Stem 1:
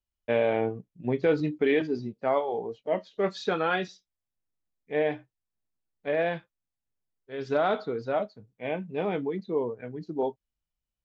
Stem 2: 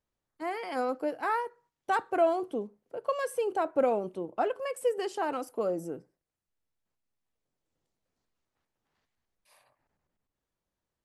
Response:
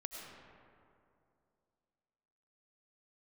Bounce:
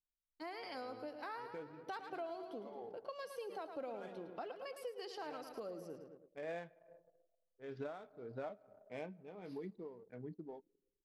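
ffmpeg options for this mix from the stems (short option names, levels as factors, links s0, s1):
-filter_complex "[0:a]adynamicsmooth=sensitivity=7:basefreq=2200,aeval=exprs='val(0)*pow(10,-20*(0.5-0.5*cos(2*PI*1.6*n/s))/20)':c=same,adelay=300,volume=0.708,asplit=2[s0][s1];[s1]volume=0.0794[s2];[1:a]aemphasis=mode=production:type=50fm,highshelf=f=6200:t=q:w=3:g=-10,volume=0.473,asplit=3[s3][s4][s5];[s4]volume=0.316[s6];[s5]apad=whole_len=500510[s7];[s0][s7]sidechaincompress=threshold=0.00251:ratio=8:attack=16:release=558[s8];[2:a]atrim=start_sample=2205[s9];[s2][s9]afir=irnorm=-1:irlink=0[s10];[s6]aecho=0:1:109|218|327|436|545|654|763:1|0.51|0.26|0.133|0.0677|0.0345|0.0176[s11];[s8][s3][s10][s11]amix=inputs=4:normalize=0,anlmdn=0.0000251,acompressor=threshold=0.00501:ratio=3"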